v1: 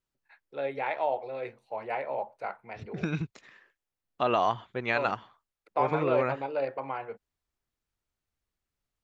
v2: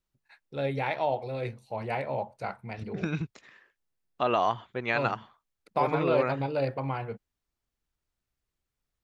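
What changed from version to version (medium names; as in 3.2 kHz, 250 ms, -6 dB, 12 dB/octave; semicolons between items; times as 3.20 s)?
first voice: remove three-band isolator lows -19 dB, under 330 Hz, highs -14 dB, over 2.9 kHz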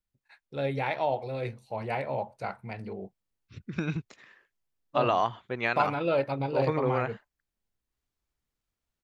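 second voice: entry +0.75 s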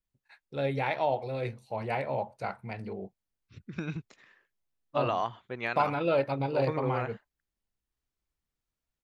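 second voice -4.5 dB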